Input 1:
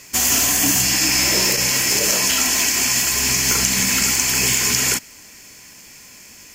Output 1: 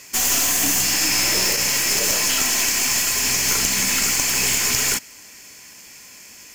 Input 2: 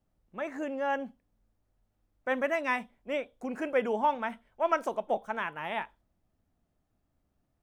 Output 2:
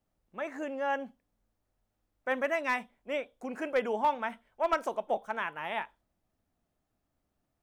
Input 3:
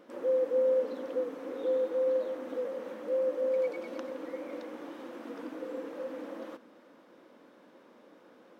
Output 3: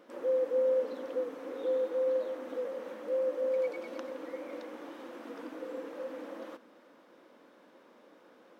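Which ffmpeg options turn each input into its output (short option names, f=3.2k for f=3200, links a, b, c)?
-af "lowshelf=f=260:g=-6.5,aeval=exprs='clip(val(0),-1,0.1)':c=same"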